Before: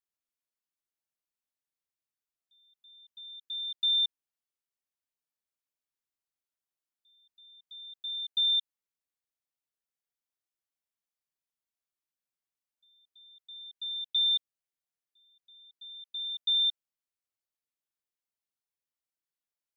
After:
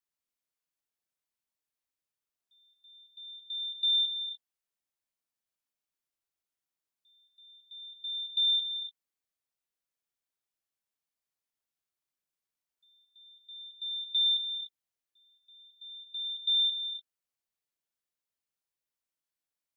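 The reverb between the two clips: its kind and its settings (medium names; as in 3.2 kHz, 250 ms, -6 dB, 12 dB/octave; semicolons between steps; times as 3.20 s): gated-style reverb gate 320 ms rising, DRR 7 dB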